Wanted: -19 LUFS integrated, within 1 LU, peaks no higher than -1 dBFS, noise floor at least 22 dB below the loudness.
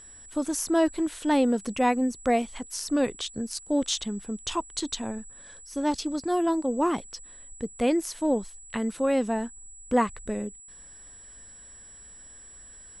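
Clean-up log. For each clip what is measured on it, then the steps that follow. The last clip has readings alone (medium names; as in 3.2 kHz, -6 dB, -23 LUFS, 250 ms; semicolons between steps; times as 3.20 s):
steady tone 7.8 kHz; tone level -46 dBFS; loudness -28.0 LUFS; peak level -11.5 dBFS; loudness target -19.0 LUFS
-> band-stop 7.8 kHz, Q 30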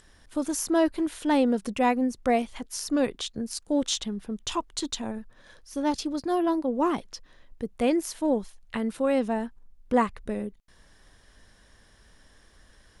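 steady tone not found; loudness -28.0 LUFS; peak level -12.0 dBFS; loudness target -19.0 LUFS
-> trim +9 dB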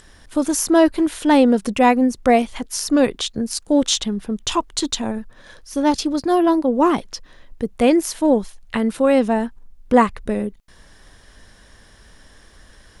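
loudness -19.0 LUFS; peak level -3.0 dBFS; noise floor -49 dBFS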